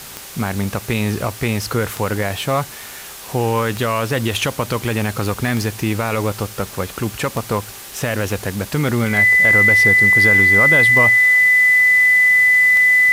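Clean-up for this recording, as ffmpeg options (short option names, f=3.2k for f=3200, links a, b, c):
-af "adeclick=t=4,bandreject=f=393.6:t=h:w=4,bandreject=f=787.2:t=h:w=4,bandreject=f=1.1808k:t=h:w=4,bandreject=f=1.5744k:t=h:w=4,bandreject=f=2k:w=30,afwtdn=0.02"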